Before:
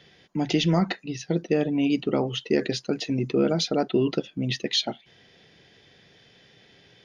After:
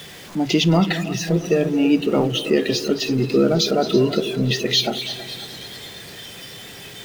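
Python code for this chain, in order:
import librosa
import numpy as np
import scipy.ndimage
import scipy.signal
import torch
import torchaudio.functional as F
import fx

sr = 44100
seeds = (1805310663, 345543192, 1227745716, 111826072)

y = x + 0.5 * 10.0 ** (-30.0 / 20.0) * np.sign(x)
y = fx.echo_heads(y, sr, ms=109, heads='second and third', feedback_pct=66, wet_db=-12.5)
y = fx.noise_reduce_blind(y, sr, reduce_db=9)
y = F.gain(torch.from_numpy(y), 4.5).numpy()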